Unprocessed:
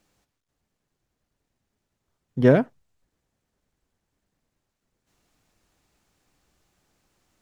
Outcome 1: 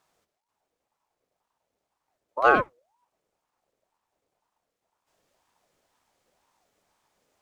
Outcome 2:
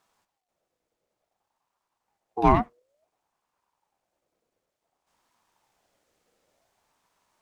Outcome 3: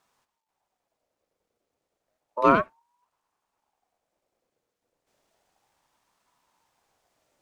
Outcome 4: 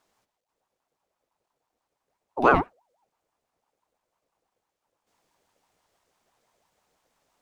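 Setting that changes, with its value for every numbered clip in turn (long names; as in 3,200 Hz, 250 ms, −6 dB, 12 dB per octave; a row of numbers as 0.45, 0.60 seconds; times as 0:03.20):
ring modulator whose carrier an LFO sweeps, at: 2, 0.56, 0.32, 6 Hertz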